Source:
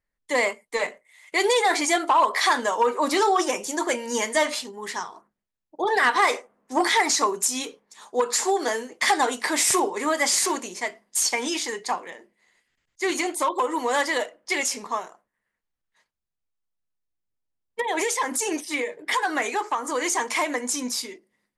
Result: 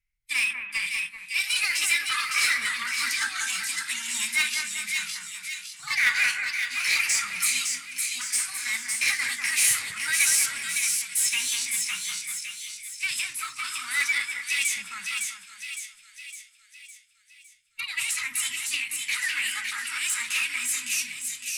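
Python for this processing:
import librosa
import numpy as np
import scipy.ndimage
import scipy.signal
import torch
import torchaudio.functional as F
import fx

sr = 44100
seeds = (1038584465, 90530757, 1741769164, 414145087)

p1 = scipy.signal.sosfilt(scipy.signal.cheby1(3, 1.0, [140.0, 1500.0], 'bandstop', fs=sr, output='sos'), x)
p2 = fx.hpss(p1, sr, part='percussive', gain_db=-8)
p3 = fx.formant_shift(p2, sr, semitones=3)
p4 = 10.0 ** (-29.0 / 20.0) * (np.abs((p3 / 10.0 ** (-29.0 / 20.0) + 3.0) % 4.0 - 2.0) - 1.0)
p5 = p3 + F.gain(torch.from_numpy(p4), -6.0).numpy()
p6 = fx.cheby_harmonics(p5, sr, harmonics=(7,), levels_db=(-28,), full_scale_db=-14.0)
p7 = p6 + fx.echo_split(p6, sr, split_hz=2100.0, low_ms=194, high_ms=559, feedback_pct=52, wet_db=-4, dry=0)
y = F.gain(torch.from_numpy(p7), 4.5).numpy()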